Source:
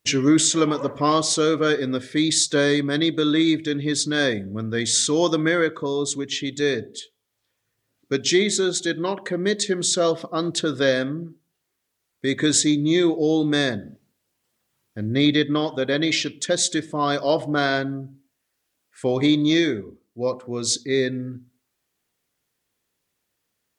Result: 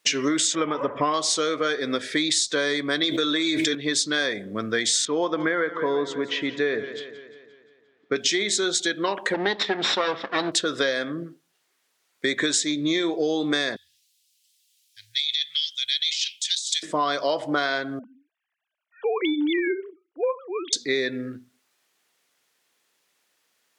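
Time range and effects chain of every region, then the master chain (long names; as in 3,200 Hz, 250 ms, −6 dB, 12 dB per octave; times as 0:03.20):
0:00.55–0:01.14: Savitzky-Golay smoothing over 25 samples + low-shelf EQ 99 Hz +12 dB
0:03.03–0:03.75: high-shelf EQ 6,100 Hz +9 dB + notch comb filter 180 Hz + envelope flattener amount 100%
0:05.05–0:08.16: low-pass filter 1,900 Hz + feedback echo with a swinging delay time 175 ms, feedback 55%, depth 53 cents, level −16 dB
0:09.34–0:10.52: lower of the sound and its delayed copy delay 0.54 ms + low-pass filter 4,500 Hz 24 dB per octave
0:13.76–0:16.83: inverse Chebyshev band-stop filter 190–880 Hz, stop band 70 dB + compressor whose output falls as the input rises −32 dBFS
0:17.99–0:20.73: three sine waves on the formant tracks + downward compressor, threshold −20 dBFS
whole clip: meter weighting curve A; downward compressor 10 to 1, threshold −28 dBFS; level +8 dB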